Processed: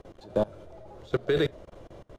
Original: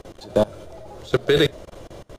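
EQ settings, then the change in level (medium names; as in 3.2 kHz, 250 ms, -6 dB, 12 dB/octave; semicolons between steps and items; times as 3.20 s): treble shelf 3.5 kHz -11 dB; -7.0 dB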